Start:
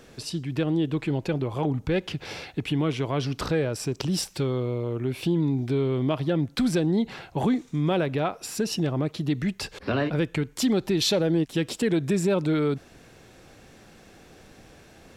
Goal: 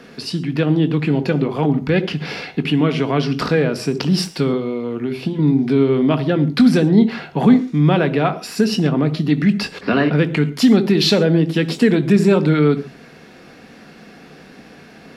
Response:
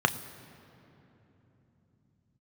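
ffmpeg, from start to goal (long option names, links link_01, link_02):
-filter_complex "[0:a]asettb=1/sr,asplit=3[link_01][link_02][link_03];[link_01]atrim=end=4.534[link_04];[link_02]atrim=start=4.53:end=5.39,asetpts=PTS-STARTPTS,afade=type=in:duration=0.004:curve=qsin,afade=type=out:start_time=0.856:duration=0.004:curve=qsin,acrossover=split=1300|2900|7300[link_05][link_06][link_07][link_08];[link_05]acompressor=threshold=-27dB:ratio=4[link_09];[link_06]acompressor=threshold=-53dB:ratio=4[link_10];[link_07]acompressor=threshold=-46dB:ratio=4[link_11];[link_08]acompressor=threshold=-59dB:ratio=4[link_12];[link_09][link_10][link_11][link_12]amix=inputs=4:normalize=0[link_13];[link_03]atrim=start=5.386[link_14];[link_04][link_13]acrossfade=duration=0.004:curve1=hsin:curve2=qsin[link_15];[link_15][link_14]acrossfade=duration=0.004:curve1=qsin:curve2=hsin[link_16];[1:a]atrim=start_sample=2205,afade=type=out:start_time=0.28:duration=0.01,atrim=end_sample=12789,asetrate=70560,aresample=44100[link_17];[link_16][link_17]afir=irnorm=-1:irlink=0"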